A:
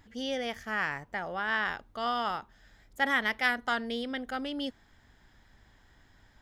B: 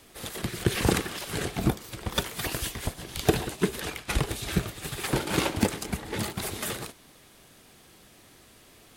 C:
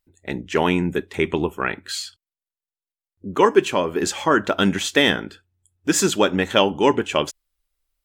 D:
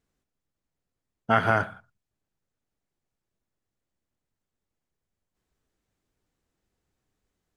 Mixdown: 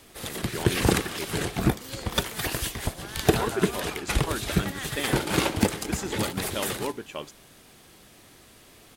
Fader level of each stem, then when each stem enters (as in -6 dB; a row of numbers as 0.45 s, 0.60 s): -12.5 dB, +2.0 dB, -15.5 dB, -14.0 dB; 1.65 s, 0.00 s, 0.00 s, 2.05 s